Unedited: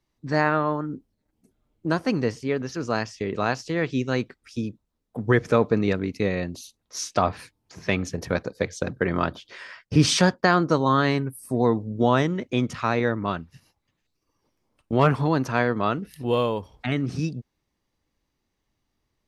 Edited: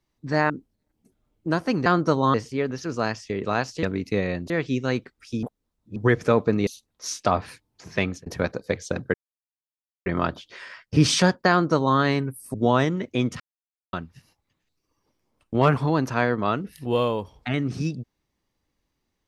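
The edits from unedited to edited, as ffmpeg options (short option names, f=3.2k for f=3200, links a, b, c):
-filter_complex "[0:a]asplit=14[a][b][c][d][e][f][g][h][i][j][k][l][m][n];[a]atrim=end=0.502[o];[b]atrim=start=0.888:end=2.252[p];[c]atrim=start=10.488:end=10.972[q];[d]atrim=start=2.248:end=3.742[r];[e]atrim=start=5.908:end=6.582[s];[f]atrim=start=3.738:end=4.672[t];[g]atrim=start=4.668:end=5.202,asetpts=PTS-STARTPTS,areverse[u];[h]atrim=start=5.198:end=5.912[v];[i]atrim=start=6.578:end=8.17,asetpts=PTS-STARTPTS,afade=t=out:st=1.302:d=0.29:c=qsin[w];[j]atrim=start=8.17:end=9.05,asetpts=PTS-STARTPTS,afade=t=in:d=0.004:c=hsin,afade=t=out:st=0.876:d=0.004:c=hsin,apad=pad_dur=0.92[x];[k]atrim=start=9.05:end=11.532,asetpts=PTS-STARTPTS,afade=t=in:d=0.004:c=hsin[y];[l]atrim=start=11.918:end=12.78,asetpts=PTS-STARTPTS,afade=t=out:st=0.858:d=0.004:c=hsin[z];[m]atrim=start=12.78:end=13.31,asetpts=PTS-STARTPTS,volume=0[aa];[n]atrim=start=13.31,asetpts=PTS-STARTPTS,afade=t=in:d=0.004:c=hsin[ab];[o][p]acrossfade=d=0.004:c1=hsin:c2=hsin[ac];[ac][q]acrossfade=d=0.004:c1=hsin:c2=hsin[ad];[ad][r]acrossfade=d=0.004:c1=hsin:c2=hsin[ae];[ae][s]acrossfade=d=0.004:c1=hsin:c2=hsin[af];[af][t]acrossfade=d=0.004:c1=hsin:c2=hsin[ag];[ag][u]acrossfade=d=0.004:c1=hsin:c2=hsin[ah];[ah][v]acrossfade=d=0.004:c1=hsin:c2=hsin[ai];[w][x][y]concat=n=3:v=0:a=1[aj];[ai][aj]acrossfade=d=0.004:c1=hsin:c2=hsin[ak];[z][aa][ab]concat=n=3:v=0:a=1[al];[ak][al]acrossfade=d=0.004:c1=hsin:c2=hsin"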